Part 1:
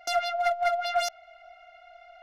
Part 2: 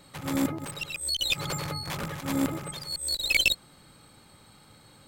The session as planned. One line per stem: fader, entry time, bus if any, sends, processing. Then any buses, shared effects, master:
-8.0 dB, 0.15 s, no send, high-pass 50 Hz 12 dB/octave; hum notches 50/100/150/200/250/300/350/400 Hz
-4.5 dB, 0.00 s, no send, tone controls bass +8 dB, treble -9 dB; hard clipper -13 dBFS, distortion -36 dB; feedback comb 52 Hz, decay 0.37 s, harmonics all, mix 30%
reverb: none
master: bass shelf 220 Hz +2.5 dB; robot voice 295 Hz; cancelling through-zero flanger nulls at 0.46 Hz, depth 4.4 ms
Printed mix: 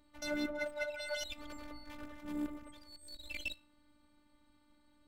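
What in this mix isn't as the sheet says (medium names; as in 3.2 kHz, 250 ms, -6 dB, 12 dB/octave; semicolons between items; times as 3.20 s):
stem 2 -4.5 dB -> -12.5 dB; master: missing cancelling through-zero flanger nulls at 0.46 Hz, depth 4.4 ms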